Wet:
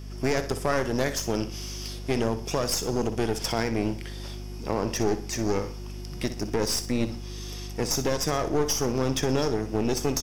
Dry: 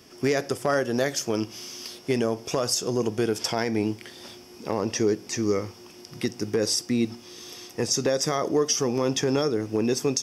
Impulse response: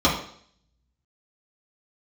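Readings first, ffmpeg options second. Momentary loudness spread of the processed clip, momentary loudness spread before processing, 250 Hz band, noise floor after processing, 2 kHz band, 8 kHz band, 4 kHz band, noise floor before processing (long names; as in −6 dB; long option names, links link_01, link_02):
11 LU, 14 LU, −1.5 dB, −37 dBFS, −1.0 dB, −2.5 dB, −2.0 dB, −48 dBFS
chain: -filter_complex "[0:a]aeval=exprs='val(0)+0.0126*(sin(2*PI*50*n/s)+sin(2*PI*2*50*n/s)/2+sin(2*PI*3*50*n/s)/3+sin(2*PI*4*50*n/s)/4+sin(2*PI*5*50*n/s)/5)':channel_layout=same,aeval=exprs='clip(val(0),-1,0.0299)':channel_layout=same,asplit=2[link_01][link_02];[link_02]aecho=0:1:61|122|183:0.251|0.0854|0.029[link_03];[link_01][link_03]amix=inputs=2:normalize=0"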